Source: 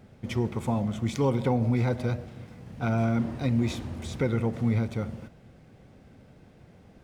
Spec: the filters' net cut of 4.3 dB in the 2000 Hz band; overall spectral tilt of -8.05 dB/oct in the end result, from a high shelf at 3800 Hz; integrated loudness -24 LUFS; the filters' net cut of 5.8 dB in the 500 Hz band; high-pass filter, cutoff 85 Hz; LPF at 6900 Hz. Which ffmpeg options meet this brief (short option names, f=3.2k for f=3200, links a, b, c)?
-af "highpass=85,lowpass=6.9k,equalizer=f=500:t=o:g=-7,equalizer=f=2k:t=o:g=-4,highshelf=f=3.8k:g=-5,volume=6dB"